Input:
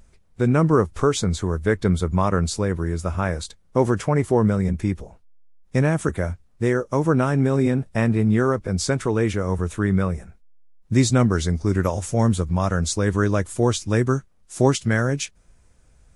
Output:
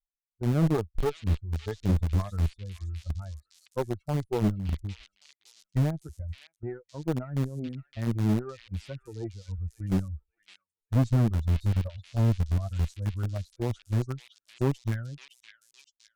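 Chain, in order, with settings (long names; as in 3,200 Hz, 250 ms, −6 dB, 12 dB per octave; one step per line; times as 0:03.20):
spectral dynamics exaggerated over time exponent 3
noise gate −41 dBFS, range −12 dB
spectral tilt −4.5 dB per octave
in parallel at −6.5 dB: centre clipping without the shift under −13 dBFS
on the sum: tube saturation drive 9 dB, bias 0.7
on a send: echo through a band-pass that steps 563 ms, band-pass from 3,200 Hz, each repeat 0.7 octaves, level −1 dB
on the sum: level −9 dB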